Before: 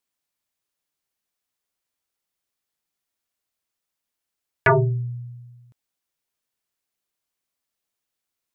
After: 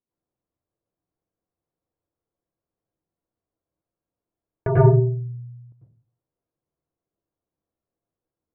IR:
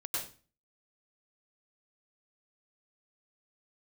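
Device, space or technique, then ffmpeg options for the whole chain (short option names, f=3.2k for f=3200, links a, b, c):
television next door: -filter_complex "[0:a]acompressor=threshold=-19dB:ratio=4,lowpass=500[a];[1:a]atrim=start_sample=2205[b];[a][b]afir=irnorm=-1:irlink=0,volume=7.5dB"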